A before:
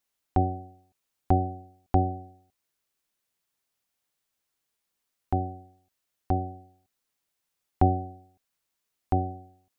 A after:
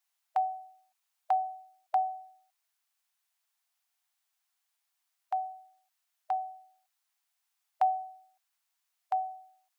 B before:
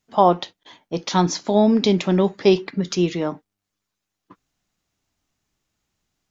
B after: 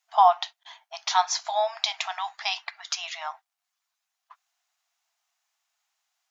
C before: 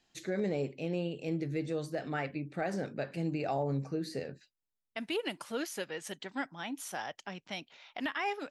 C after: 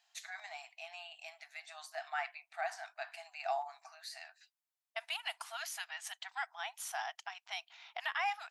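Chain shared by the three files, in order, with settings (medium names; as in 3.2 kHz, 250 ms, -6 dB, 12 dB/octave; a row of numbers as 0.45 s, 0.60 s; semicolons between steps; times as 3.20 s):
brick-wall FIR high-pass 640 Hz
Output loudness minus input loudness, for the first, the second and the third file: -4.5 LU, -6.5 LU, -5.0 LU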